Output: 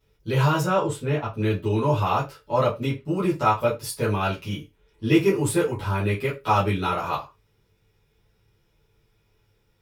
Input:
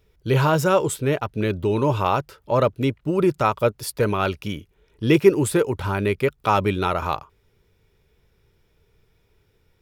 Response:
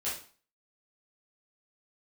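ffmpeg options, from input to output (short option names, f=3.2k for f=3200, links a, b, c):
-filter_complex "[0:a]asettb=1/sr,asplit=3[a][b][c];[a]atrim=end=0.614[d];[b]atrim=start=0.61:end=1.26,asetpts=PTS-STARTPTS,afade=t=in:d=0.004:c=qsin,afade=t=out:st=0.646:d=0.004:c=qsin,lowpass=f=3.1k:p=1[e];[c]atrim=start=1.256[f];[d][e]acrossfade=d=0.004:c1=hsin:c2=qsin[g];[g][f]acrossfade=d=0.004:c1=qsin:c2=hsin[h];[1:a]atrim=start_sample=2205,asetrate=83790,aresample=44100[i];[h][i]afir=irnorm=-1:irlink=0"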